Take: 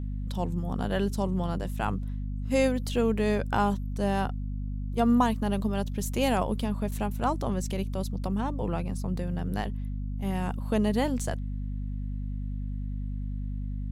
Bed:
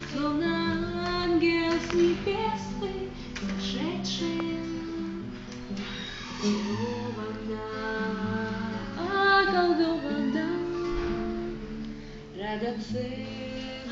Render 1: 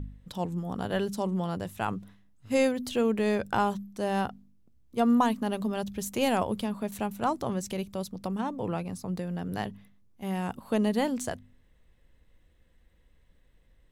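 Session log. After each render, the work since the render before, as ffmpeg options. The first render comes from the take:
-af "bandreject=f=50:t=h:w=4,bandreject=f=100:t=h:w=4,bandreject=f=150:t=h:w=4,bandreject=f=200:t=h:w=4,bandreject=f=250:t=h:w=4"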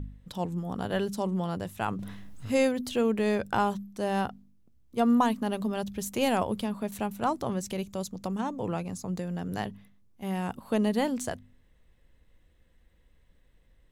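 -filter_complex "[0:a]asettb=1/sr,asplit=3[a][b][c];[a]atrim=end=1.994[d];[b]atrim=start=1.99:end=2.81,asetpts=PTS-STARTPTS,afade=t=in:d=0.004:c=qsin,afade=t=out:st=0.816:d=0.004:c=qsin,acompressor=mode=upward:threshold=-26dB:ratio=2.5:attack=3.2:release=140:knee=2.83:detection=peak[e];[c]atrim=start=2.806[f];[d][e]acrossfade=d=0.004:c1=hsin:c2=qsin[g];[g][f]acrossfade=d=0.004:c1=qsin:c2=hsin,asettb=1/sr,asplit=3[h][i][j];[h]atrim=end=7.824[k];[i]atrim=start=7.82:end=9.6,asetpts=PTS-STARTPTS,afade=t=in:d=0.004:c=qsin,afade=t=out:st=1.776:d=0.004:c=qsin,equalizer=f=6.8k:t=o:w=0.29:g=10[l];[j]atrim=start=9.596[m];[k][l]acrossfade=d=0.004:c1=hsin:c2=qsin[n];[n][m]acrossfade=d=0.004:c1=qsin:c2=hsin"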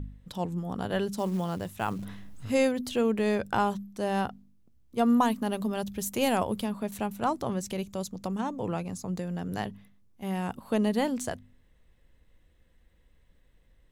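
-filter_complex "[0:a]asettb=1/sr,asplit=3[a][b][c];[a]atrim=end=1.184[d];[b]atrim=start=1.18:end=2.05,asetpts=PTS-STARTPTS,afade=t=in:d=0.004:c=qsin,afade=t=out:st=0.866:d=0.004:c=qsin,acrusher=bits=6:mode=log:mix=0:aa=0.000001[e];[c]atrim=start=2.046[f];[d][e]acrossfade=d=0.004:c1=hsin:c2=qsin[g];[g][f]acrossfade=d=0.004:c1=qsin:c2=hsin,asettb=1/sr,asplit=3[h][i][j];[h]atrim=end=5.004[k];[i]atrim=start=5:end=6.71,asetpts=PTS-STARTPTS,afade=t=in:d=0.004:c=qsin,afade=t=out:st=1.706:d=0.004:c=qsin,highshelf=f=11k:g=7.5[l];[j]atrim=start=6.706[m];[k][l]acrossfade=d=0.004:c1=hsin:c2=qsin[n];[n][m]acrossfade=d=0.004:c1=qsin:c2=hsin"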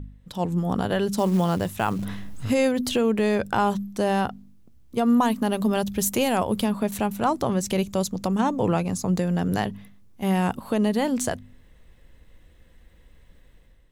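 -af "dynaudnorm=f=130:g=7:m=10dB,alimiter=limit=-12dB:level=0:latency=1:release=239"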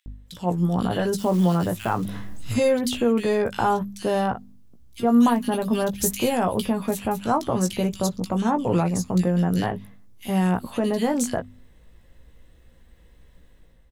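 -filter_complex "[0:a]asplit=2[a][b];[b]adelay=17,volume=-7dB[c];[a][c]amix=inputs=2:normalize=0,acrossover=split=2200[d][e];[d]adelay=60[f];[f][e]amix=inputs=2:normalize=0"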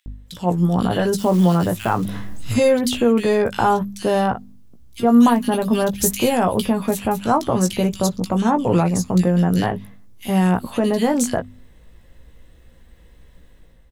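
-af "volume=4.5dB"

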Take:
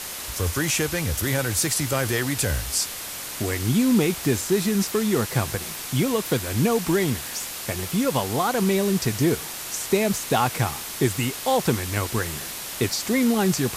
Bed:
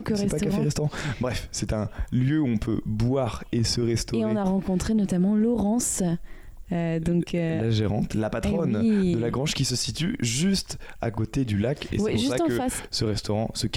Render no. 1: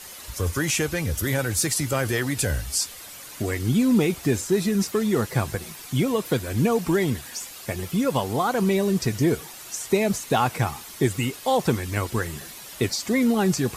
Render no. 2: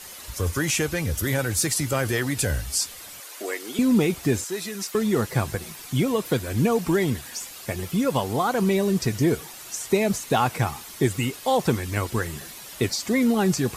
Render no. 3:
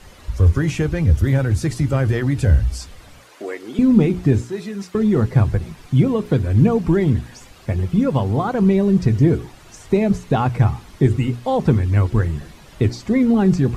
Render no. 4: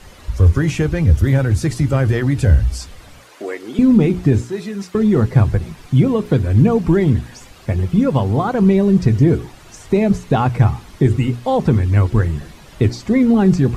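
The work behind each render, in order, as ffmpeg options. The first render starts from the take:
-af "afftdn=nr=10:nf=-34"
-filter_complex "[0:a]asettb=1/sr,asplit=3[a][b][c];[a]atrim=end=3.204[d];[b]atrim=start=3.2:end=3.79,asetpts=PTS-STARTPTS,afade=t=in:d=0.004:c=qsin,afade=t=out:st=0.586:d=0.004:c=qsin,highpass=f=370:w=0.5412,highpass=f=370:w=1.3066[e];[c]atrim=start=3.786[f];[d][e]acrossfade=d=0.004:c1=hsin:c2=qsin[g];[g][f]acrossfade=d=0.004:c1=qsin:c2=hsin,asettb=1/sr,asplit=3[h][i][j];[h]atrim=end=4.444[k];[i]atrim=start=4.44:end=4.95,asetpts=PTS-STARTPTS,afade=t=in:d=0.004:c=qsin,afade=t=out:st=0.506:d=0.004:c=qsin,highpass=f=990:p=1[l];[j]atrim=start=4.946[m];[k][l]acrossfade=d=0.004:c1=hsin:c2=qsin[n];[n][m]acrossfade=d=0.004:c1=qsin:c2=hsin"
-af "aemphasis=mode=reproduction:type=riaa,bandreject=f=60:t=h:w=6,bandreject=f=120:t=h:w=6,bandreject=f=180:t=h:w=6,bandreject=f=240:t=h:w=6,bandreject=f=300:t=h:w=6,bandreject=f=360:t=h:w=6,bandreject=f=420:t=h:w=6"
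-af "volume=2.5dB,alimiter=limit=-3dB:level=0:latency=1"

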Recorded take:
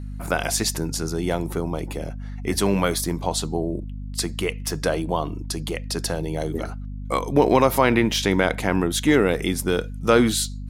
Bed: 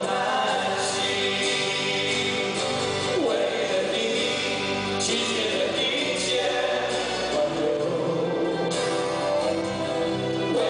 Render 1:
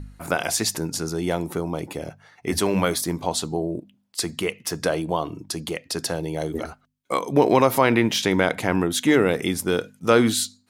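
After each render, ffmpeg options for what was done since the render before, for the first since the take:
-af "bandreject=f=50:t=h:w=4,bandreject=f=100:t=h:w=4,bandreject=f=150:t=h:w=4,bandreject=f=200:t=h:w=4,bandreject=f=250:t=h:w=4"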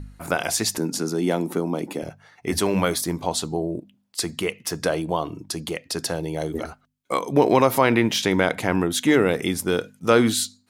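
-filter_complex "[0:a]asettb=1/sr,asplit=3[a][b][c];[a]atrim=end=0.784[d];[b]atrim=start=0.78:end=2.03,asetpts=PTS-STARTPTS,afade=t=in:d=0.004:c=qsin,afade=t=out:st=1.246:d=0.004:c=qsin,highpass=f=220:t=q:w=2[e];[c]atrim=start=2.026[f];[d][e]acrossfade=d=0.004:c1=hsin:c2=qsin[g];[g][f]acrossfade=d=0.004:c1=qsin:c2=hsin"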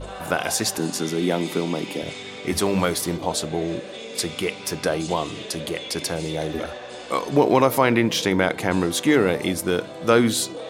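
-filter_complex "[1:a]volume=-11dB[a];[0:a][a]amix=inputs=2:normalize=0"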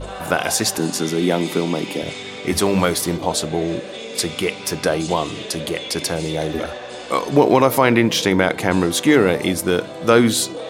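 -af "volume=4dB,alimiter=limit=-1dB:level=0:latency=1"

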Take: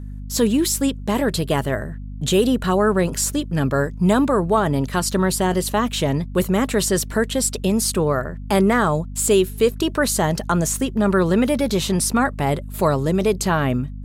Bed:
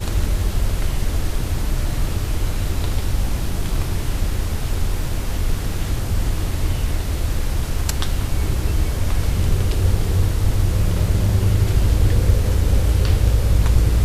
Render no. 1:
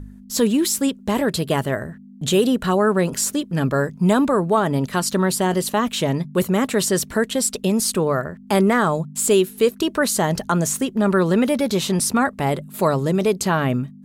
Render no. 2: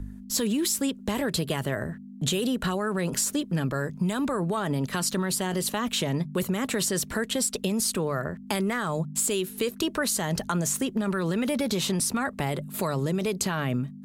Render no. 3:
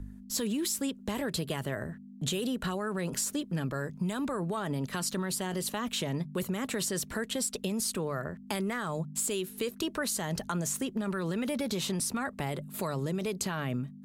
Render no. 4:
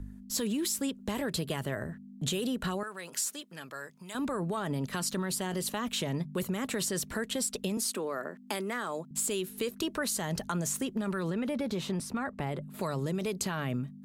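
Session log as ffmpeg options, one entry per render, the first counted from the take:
-af "bandreject=f=50:t=h:w=4,bandreject=f=100:t=h:w=4,bandreject=f=150:t=h:w=4"
-filter_complex "[0:a]acrossover=split=140|1600[a][b][c];[b]alimiter=limit=-17dB:level=0:latency=1:release=36[d];[a][d][c]amix=inputs=3:normalize=0,acompressor=threshold=-23dB:ratio=6"
-af "volume=-5.5dB"
-filter_complex "[0:a]asettb=1/sr,asplit=3[a][b][c];[a]atrim=end=2.834[d];[b]atrim=start=2.83:end=4.15,asetpts=PTS-STARTPTS,afade=t=in:d=0.004:c=qsin,afade=t=out:st=1.316:d=0.004:c=qsin,highpass=f=1.4k:p=1[e];[c]atrim=start=4.146[f];[d][e]acrossfade=d=0.004:c1=hsin:c2=qsin[g];[g][f]acrossfade=d=0.004:c1=qsin:c2=hsin,asettb=1/sr,asplit=3[h][i][j];[h]atrim=end=7.774[k];[i]atrim=start=7.77:end=9.11,asetpts=PTS-STARTPTS,afade=t=in:d=0.004:c=qsin,afade=t=out:st=1.336:d=0.004:c=qsin,highpass=f=230:w=0.5412,highpass=f=230:w=1.3066[l];[j]atrim=start=9.106[m];[k][l]acrossfade=d=0.004:c1=hsin:c2=qsin[n];[n][m]acrossfade=d=0.004:c1=qsin:c2=hsin,asettb=1/sr,asplit=3[o][p][q];[o]atrim=end=11.304[r];[p]atrim=start=11.3:end=12.81,asetpts=PTS-STARTPTS,afade=t=in:d=0.004:c=qsin,afade=t=out:st=1.506:d=0.004:c=qsin,highshelf=f=3.7k:g=-11.5[s];[q]atrim=start=12.806[t];[r][s]acrossfade=d=0.004:c1=hsin:c2=qsin[u];[u][t]acrossfade=d=0.004:c1=qsin:c2=hsin"

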